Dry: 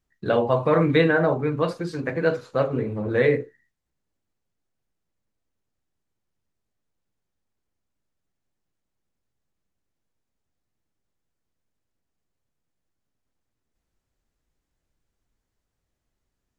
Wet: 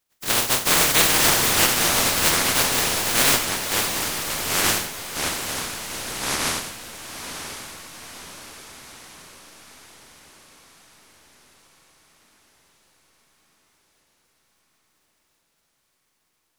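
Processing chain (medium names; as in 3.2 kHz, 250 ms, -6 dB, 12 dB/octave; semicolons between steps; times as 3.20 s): spectral contrast reduction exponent 0.1; echo that smears into a reverb 562 ms, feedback 57%, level -9 dB; ever faster or slower copies 307 ms, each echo -5 st, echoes 2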